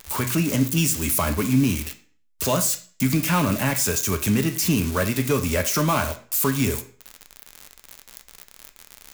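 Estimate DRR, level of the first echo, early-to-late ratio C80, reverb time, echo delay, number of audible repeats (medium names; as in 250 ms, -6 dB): 5.5 dB, no echo, 16.5 dB, 0.45 s, no echo, no echo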